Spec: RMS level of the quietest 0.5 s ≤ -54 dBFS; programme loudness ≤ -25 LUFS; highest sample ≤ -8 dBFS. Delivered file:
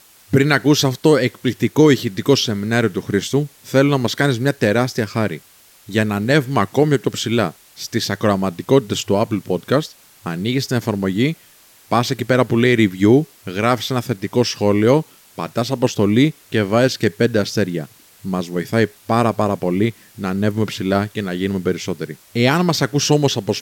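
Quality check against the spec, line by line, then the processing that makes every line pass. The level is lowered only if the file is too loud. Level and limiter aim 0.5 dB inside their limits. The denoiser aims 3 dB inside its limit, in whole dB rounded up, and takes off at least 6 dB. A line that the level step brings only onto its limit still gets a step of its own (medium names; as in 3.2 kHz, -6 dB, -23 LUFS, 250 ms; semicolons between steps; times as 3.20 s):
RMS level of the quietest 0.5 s -49 dBFS: fail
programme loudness -18.0 LUFS: fail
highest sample -2.5 dBFS: fail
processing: trim -7.5 dB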